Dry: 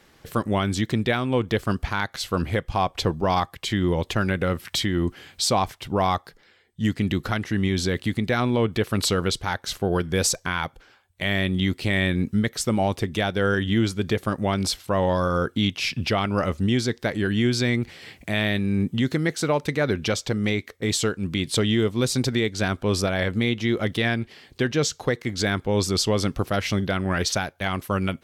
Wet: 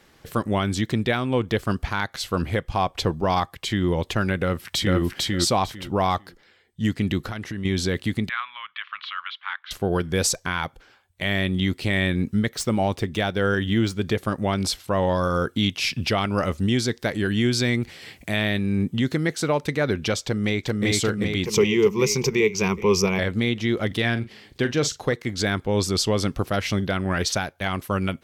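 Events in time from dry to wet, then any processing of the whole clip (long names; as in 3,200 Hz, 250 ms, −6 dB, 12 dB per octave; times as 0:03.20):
0:04.37–0:04.99: delay throw 450 ms, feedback 20%, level −1 dB
0:07.19–0:07.65: downward compressor, threshold −27 dBFS
0:08.29–0:09.71: elliptic band-pass filter 1,100–3,300 Hz, stop band 50 dB
0:12.54–0:14.02: running median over 3 samples
0:15.23–0:18.36: high-shelf EQ 4,800 Hz +4.5 dB
0:20.24–0:20.85: delay throw 390 ms, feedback 65%, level −0.5 dB
0:21.45–0:23.19: EQ curve with evenly spaced ripples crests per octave 0.78, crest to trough 16 dB
0:23.87–0:25.14: double-tracking delay 42 ms −12.5 dB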